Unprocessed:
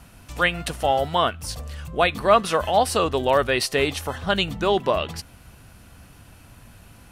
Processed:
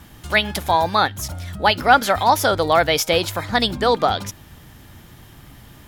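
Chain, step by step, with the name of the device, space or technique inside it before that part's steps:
nightcore (speed change +21%)
level +3.5 dB

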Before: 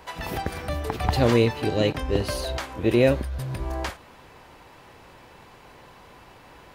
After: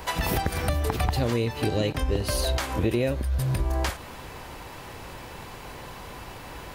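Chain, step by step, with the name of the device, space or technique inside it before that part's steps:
ASMR close-microphone chain (low-shelf EQ 110 Hz +7 dB; downward compressor 8 to 1, threshold −29 dBFS, peak gain reduction 15.5 dB; high-shelf EQ 6,200 Hz +8 dB)
level +7 dB

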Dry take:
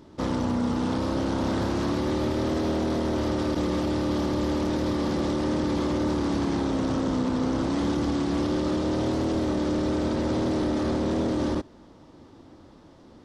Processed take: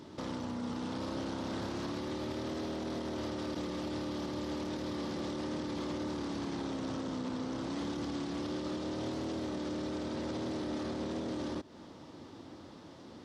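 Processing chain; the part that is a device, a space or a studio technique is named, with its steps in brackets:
broadcast voice chain (high-pass filter 91 Hz; de-essing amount 95%; downward compressor, threshold −33 dBFS, peak gain reduction 10.5 dB; parametric band 3,900 Hz +4.5 dB 2.2 octaves; brickwall limiter −29 dBFS, peak gain reduction 6 dB)

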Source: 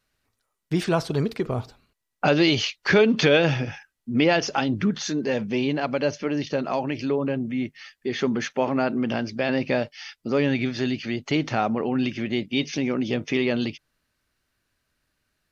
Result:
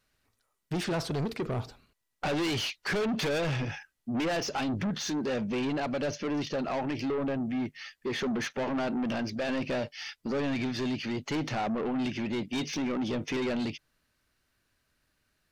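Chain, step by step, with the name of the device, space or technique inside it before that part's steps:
saturation between pre-emphasis and de-emphasis (high-shelf EQ 6,500 Hz +9.5 dB; soft clipping −27 dBFS, distortion −5 dB; high-shelf EQ 6,500 Hz −9.5 dB)

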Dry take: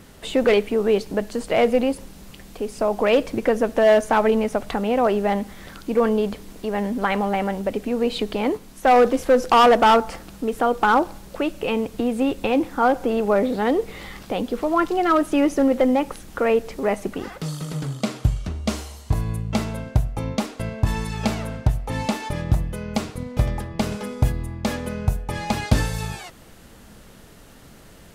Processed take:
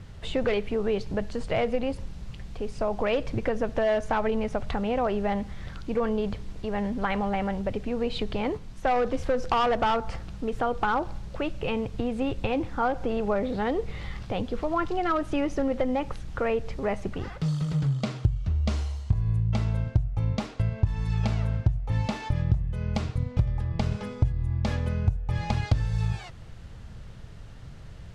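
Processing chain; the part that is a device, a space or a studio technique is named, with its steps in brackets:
jukebox (low-pass filter 5,500 Hz 12 dB per octave; low shelf with overshoot 170 Hz +11 dB, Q 1.5; downward compressor 4 to 1, threshold −17 dBFS, peak gain reduction 15 dB)
level −4.5 dB

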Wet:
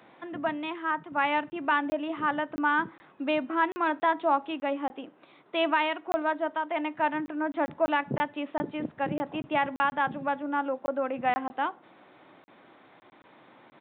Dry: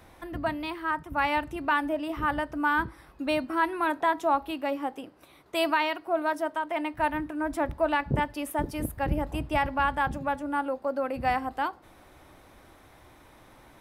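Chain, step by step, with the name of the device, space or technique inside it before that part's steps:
call with lost packets (high-pass filter 160 Hz 24 dB per octave; downsampling to 8,000 Hz; dropped packets)

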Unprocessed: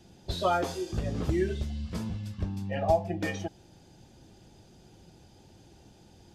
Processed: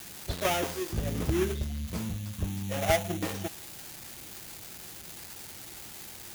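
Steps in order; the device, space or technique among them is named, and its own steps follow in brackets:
budget class-D amplifier (gap after every zero crossing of 0.3 ms; spike at every zero crossing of −23.5 dBFS)

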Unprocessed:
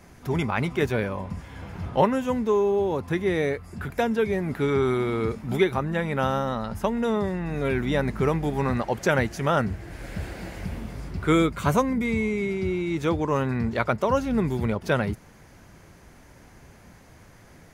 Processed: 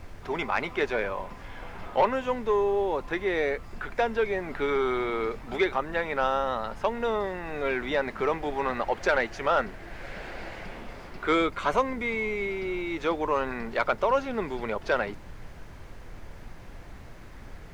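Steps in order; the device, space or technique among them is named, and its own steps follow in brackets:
aircraft cabin announcement (band-pass filter 470–3,900 Hz; soft clipping −15 dBFS, distortion −18 dB; brown noise bed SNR 12 dB)
level +2 dB

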